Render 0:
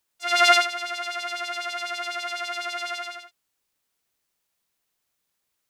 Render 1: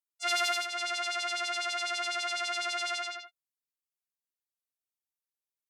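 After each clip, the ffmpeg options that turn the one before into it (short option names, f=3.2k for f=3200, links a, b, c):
-af "afftdn=nr=22:nf=-47,aemphasis=mode=production:type=cd,acompressor=threshold=-21dB:ratio=16,volume=-3dB"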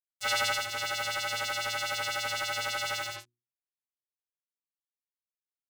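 -af "aeval=exprs='val(0)*sin(2*PI*110*n/s)':c=same,acrusher=bits=5:mix=0:aa=0.5,bandreject=f=60:t=h:w=6,bandreject=f=120:t=h:w=6,bandreject=f=180:t=h:w=6,bandreject=f=240:t=h:w=6,bandreject=f=300:t=h:w=6,bandreject=f=360:t=h:w=6,volume=3.5dB"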